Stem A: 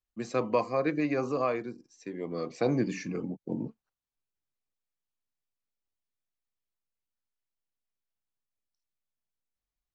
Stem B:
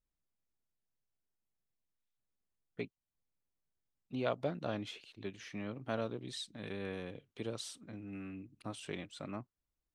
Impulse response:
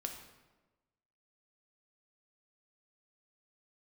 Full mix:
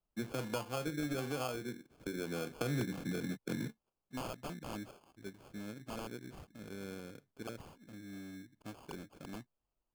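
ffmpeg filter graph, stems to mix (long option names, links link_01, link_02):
-filter_complex "[0:a]equalizer=frequency=7900:width_type=o:width=1.5:gain=-7.5,acrossover=split=130[link_01][link_02];[link_02]acompressor=threshold=-39dB:ratio=5[link_03];[link_01][link_03]amix=inputs=2:normalize=0,volume=2dB[link_04];[1:a]adynamicequalizer=threshold=0.00251:dfrequency=240:dqfactor=0.82:tfrequency=240:tqfactor=0.82:attack=5:release=100:ratio=0.375:range=3:mode=boostabove:tftype=bell,aeval=exprs='(mod(22.4*val(0)+1,2)-1)/22.4':channel_layout=same,volume=-7.5dB[link_05];[link_04][link_05]amix=inputs=2:normalize=0,acrusher=samples=23:mix=1:aa=0.000001"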